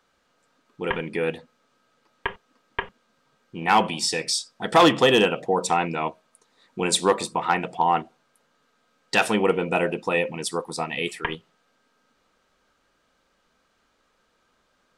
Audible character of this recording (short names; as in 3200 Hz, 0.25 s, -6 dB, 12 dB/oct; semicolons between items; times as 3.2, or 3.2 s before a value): noise floor -68 dBFS; spectral tilt -3.5 dB/oct